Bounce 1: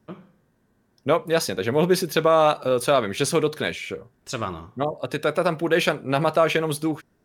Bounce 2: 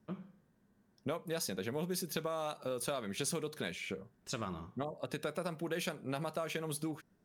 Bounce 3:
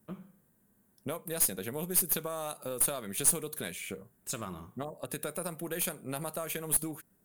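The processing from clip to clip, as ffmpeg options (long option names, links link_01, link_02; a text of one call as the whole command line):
ffmpeg -i in.wav -filter_complex "[0:a]equalizer=frequency=190:width=3.9:gain=8,acrossover=split=5300[link_01][link_02];[link_01]acompressor=threshold=-27dB:ratio=6[link_03];[link_03][link_02]amix=inputs=2:normalize=0,volume=-8dB" out.wav
ffmpeg -i in.wav -af "aexciter=amount=3.8:drive=9.1:freq=7600,aeval=exprs='0.355*(cos(1*acos(clip(val(0)/0.355,-1,1)))-cos(1*PI/2))+0.0224*(cos(6*acos(clip(val(0)/0.355,-1,1)))-cos(6*PI/2))':channel_layout=same" out.wav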